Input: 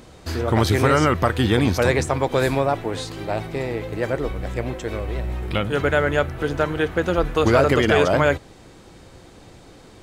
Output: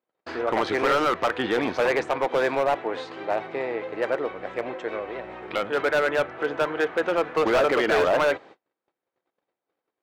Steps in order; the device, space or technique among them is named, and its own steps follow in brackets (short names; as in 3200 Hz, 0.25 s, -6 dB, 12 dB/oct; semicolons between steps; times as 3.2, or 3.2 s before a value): walkie-talkie (BPF 440–2300 Hz; hard clip -18 dBFS, distortion -10 dB; gate -46 dBFS, range -38 dB); gain +1.5 dB